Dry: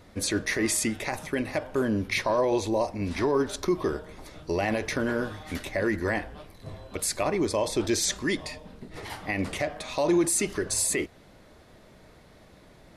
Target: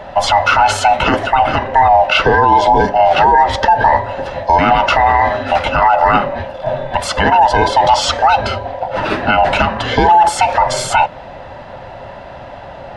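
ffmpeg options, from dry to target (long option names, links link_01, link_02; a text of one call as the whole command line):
ffmpeg -i in.wav -filter_complex "[0:a]afftfilt=real='real(if(lt(b,1008),b+24*(1-2*mod(floor(b/24),2)),b),0)':imag='imag(if(lt(b,1008),b+24*(1-2*mod(floor(b/24),2)),b),0)':win_size=2048:overlap=0.75,acrossover=split=250|1200[link_01][link_02][link_03];[link_01]acompressor=threshold=-39dB:ratio=10[link_04];[link_04][link_02][link_03]amix=inputs=3:normalize=0,lowpass=2600,alimiter=level_in=23dB:limit=-1dB:release=50:level=0:latency=1,volume=-1dB" out.wav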